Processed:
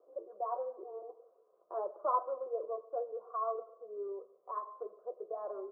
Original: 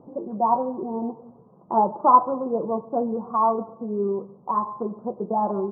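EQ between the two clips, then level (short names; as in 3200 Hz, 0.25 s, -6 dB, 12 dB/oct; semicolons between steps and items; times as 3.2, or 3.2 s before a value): HPF 430 Hz 24 dB/oct; fixed phaser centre 880 Hz, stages 6; -9.0 dB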